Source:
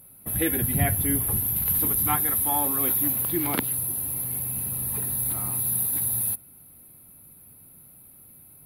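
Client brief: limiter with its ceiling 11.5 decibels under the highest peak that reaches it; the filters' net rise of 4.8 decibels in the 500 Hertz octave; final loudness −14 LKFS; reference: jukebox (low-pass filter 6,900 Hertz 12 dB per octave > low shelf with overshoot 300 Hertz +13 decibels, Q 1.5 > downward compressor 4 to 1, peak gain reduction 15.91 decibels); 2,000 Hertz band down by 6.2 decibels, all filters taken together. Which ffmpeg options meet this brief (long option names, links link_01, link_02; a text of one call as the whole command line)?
ffmpeg -i in.wav -af "equalizer=frequency=500:width_type=o:gain=8,equalizer=frequency=2000:width_type=o:gain=-7.5,alimiter=limit=-18.5dB:level=0:latency=1,lowpass=6900,lowshelf=frequency=300:width_type=q:width=1.5:gain=13,acompressor=threshold=-31dB:ratio=4,volume=20dB" out.wav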